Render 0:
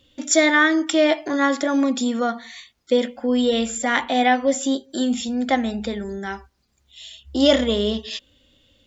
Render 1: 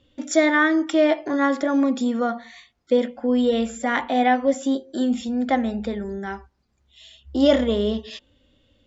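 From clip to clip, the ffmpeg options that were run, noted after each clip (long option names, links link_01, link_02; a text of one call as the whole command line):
ffmpeg -i in.wav -af "lowpass=5500,equalizer=frequency=3800:width_type=o:width=2:gain=-7,bandreject=frequency=177.2:width_type=h:width=4,bandreject=frequency=354.4:width_type=h:width=4,bandreject=frequency=531.6:width_type=h:width=4,bandreject=frequency=708.8:width_type=h:width=4,bandreject=frequency=886:width_type=h:width=4" out.wav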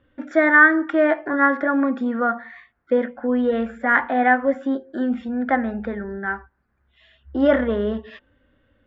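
ffmpeg -i in.wav -af "lowpass=frequency=1600:width_type=q:width=3.9,volume=-1dB" out.wav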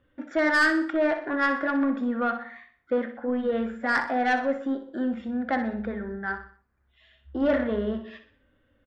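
ffmpeg -i in.wav -af "asoftclip=type=tanh:threshold=-12dB,flanger=delay=1.5:depth=9.9:regen=-88:speed=0.3:shape=triangular,aecho=1:1:62|124|186|248:0.299|0.125|0.0527|0.0221" out.wav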